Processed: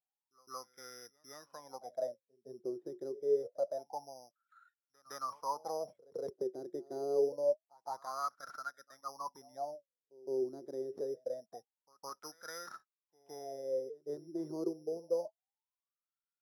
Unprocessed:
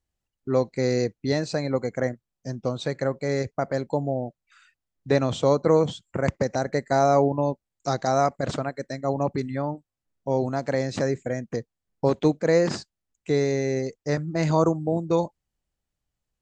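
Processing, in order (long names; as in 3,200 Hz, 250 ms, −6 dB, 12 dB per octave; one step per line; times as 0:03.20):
low-pass filter 2,000 Hz 24 dB per octave
bad sample-rate conversion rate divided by 8×, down none, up zero stuff
LFO wah 0.26 Hz 360–1,400 Hz, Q 21
echo ahead of the sound 163 ms −22.5 dB
level +2.5 dB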